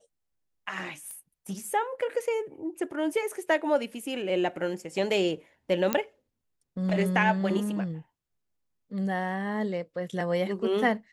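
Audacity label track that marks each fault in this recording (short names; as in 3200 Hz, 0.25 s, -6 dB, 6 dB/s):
1.110000	1.110000	pop -28 dBFS
5.930000	5.930000	pop -9 dBFS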